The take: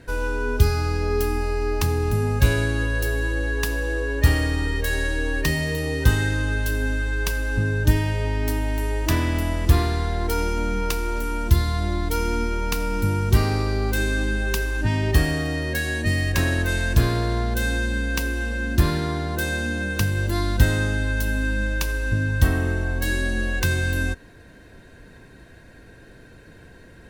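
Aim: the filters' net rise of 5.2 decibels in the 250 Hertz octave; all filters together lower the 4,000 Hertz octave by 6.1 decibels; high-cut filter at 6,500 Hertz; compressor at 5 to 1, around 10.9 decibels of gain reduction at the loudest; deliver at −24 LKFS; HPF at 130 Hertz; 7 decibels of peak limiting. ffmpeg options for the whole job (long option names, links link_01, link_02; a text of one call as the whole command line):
ffmpeg -i in.wav -af "highpass=130,lowpass=6500,equalizer=frequency=250:width_type=o:gain=7,equalizer=frequency=4000:width_type=o:gain=-7,acompressor=threshold=-29dB:ratio=5,volume=9.5dB,alimiter=limit=-15.5dB:level=0:latency=1" out.wav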